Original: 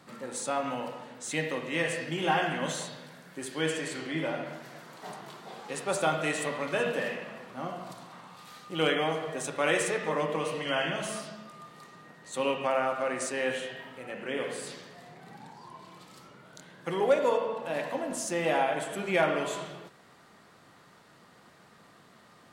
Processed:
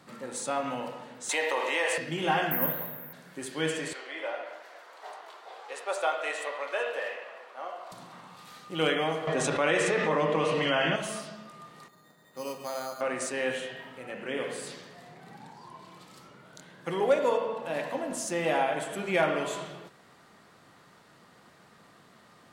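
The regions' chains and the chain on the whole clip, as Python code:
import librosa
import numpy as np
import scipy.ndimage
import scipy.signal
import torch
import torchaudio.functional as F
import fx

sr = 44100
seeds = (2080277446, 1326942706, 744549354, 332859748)

y = fx.chain(x, sr, fx.highpass(hz=420.0, slope=24),
    fx.peak_eq(hz=900.0, db=11.0, octaves=0.34),
    fx.env_flatten(amount_pct=70), at=(1.29, 1.98))
y = fx.chain(y, sr, fx.lowpass(hz=2300.0, slope=24),
    fx.resample_bad(factor=3, down='none', up='zero_stuff'), at=(2.51, 3.13))
y = fx.chain(y, sr, fx.highpass(hz=480.0, slope=24),
    fx.high_shelf(hz=5300.0, db=-10.0), at=(3.93, 7.92))
y = fx.chain(y, sr, fx.air_absorb(metres=68.0),
    fx.env_flatten(amount_pct=70), at=(9.27, 10.96))
y = fx.chain(y, sr, fx.gaussian_blur(sigma=2.4),
    fx.comb_fb(f0_hz=620.0, decay_s=0.21, harmonics='all', damping=0.0, mix_pct=60),
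    fx.resample_bad(factor=8, down='filtered', up='hold'), at=(11.88, 13.01))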